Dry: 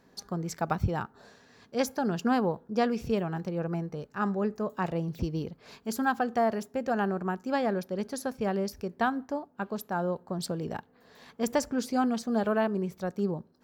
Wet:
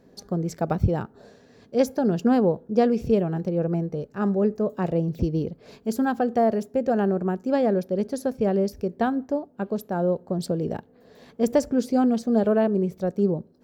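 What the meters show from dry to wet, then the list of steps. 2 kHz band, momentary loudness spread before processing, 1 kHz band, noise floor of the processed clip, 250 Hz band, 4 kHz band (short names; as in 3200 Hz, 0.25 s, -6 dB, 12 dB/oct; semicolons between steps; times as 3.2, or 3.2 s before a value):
-2.0 dB, 8 LU, +1.5 dB, -56 dBFS, +7.0 dB, -1.0 dB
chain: resonant low shelf 740 Hz +7.5 dB, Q 1.5; gain -1 dB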